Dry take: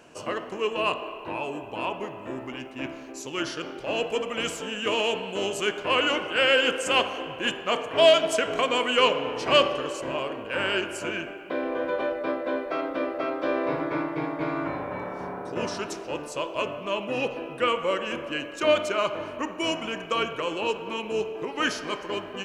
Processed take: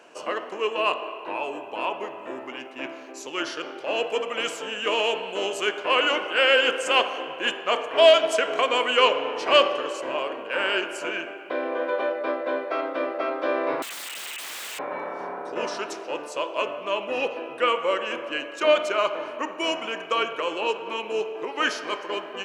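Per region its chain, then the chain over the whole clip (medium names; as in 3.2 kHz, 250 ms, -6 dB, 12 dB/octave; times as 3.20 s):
13.82–14.79 s: frequency inversion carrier 3.2 kHz + feedback comb 290 Hz, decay 0.21 s, mix 30% + integer overflow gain 30.5 dB
whole clip: high-pass 390 Hz 12 dB/octave; treble shelf 5.8 kHz -7 dB; trim +3 dB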